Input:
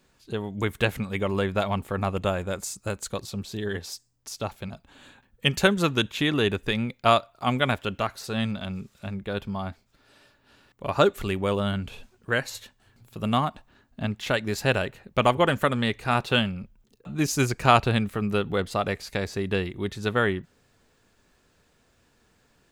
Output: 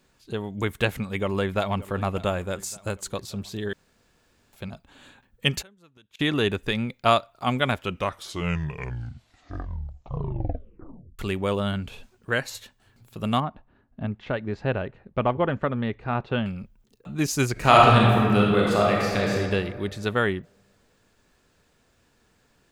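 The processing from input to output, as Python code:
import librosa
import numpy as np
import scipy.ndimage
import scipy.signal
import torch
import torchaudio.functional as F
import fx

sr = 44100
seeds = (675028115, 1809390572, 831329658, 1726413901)

y = fx.echo_throw(x, sr, start_s=0.91, length_s=0.97, ms=580, feedback_pct=50, wet_db=-18.0)
y = fx.gate_flip(y, sr, shuts_db=-23.0, range_db=-33, at=(5.61, 6.19), fade=0.02)
y = fx.spacing_loss(y, sr, db_at_10k=39, at=(13.4, 16.46))
y = fx.reverb_throw(y, sr, start_s=17.52, length_s=1.81, rt60_s=1.9, drr_db=-4.0)
y = fx.edit(y, sr, fx.room_tone_fill(start_s=3.73, length_s=0.8),
    fx.tape_stop(start_s=7.69, length_s=3.5), tone=tone)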